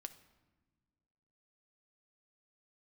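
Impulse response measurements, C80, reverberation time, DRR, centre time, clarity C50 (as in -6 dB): 16.5 dB, no single decay rate, 9.0 dB, 6 ms, 14.0 dB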